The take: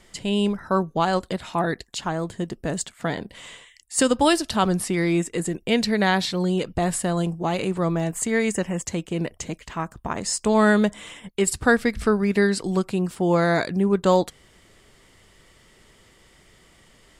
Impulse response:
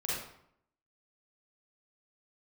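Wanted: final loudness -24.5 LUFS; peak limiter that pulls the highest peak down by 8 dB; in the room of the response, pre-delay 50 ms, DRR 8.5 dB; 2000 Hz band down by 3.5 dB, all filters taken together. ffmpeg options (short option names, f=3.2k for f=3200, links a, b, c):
-filter_complex "[0:a]equalizer=f=2k:t=o:g=-4.5,alimiter=limit=-15dB:level=0:latency=1,asplit=2[a][b];[1:a]atrim=start_sample=2205,adelay=50[c];[b][c]afir=irnorm=-1:irlink=0,volume=-13.5dB[d];[a][d]amix=inputs=2:normalize=0,volume=0.5dB"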